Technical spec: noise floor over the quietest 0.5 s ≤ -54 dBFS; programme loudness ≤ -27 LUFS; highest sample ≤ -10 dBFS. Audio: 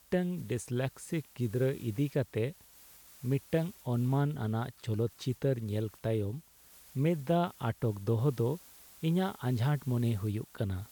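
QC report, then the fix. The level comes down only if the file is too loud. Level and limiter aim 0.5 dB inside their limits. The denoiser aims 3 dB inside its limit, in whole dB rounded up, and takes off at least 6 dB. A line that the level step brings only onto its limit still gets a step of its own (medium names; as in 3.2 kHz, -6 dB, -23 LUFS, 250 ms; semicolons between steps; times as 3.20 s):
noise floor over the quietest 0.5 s -58 dBFS: pass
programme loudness -33.0 LUFS: pass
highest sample -17.5 dBFS: pass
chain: none needed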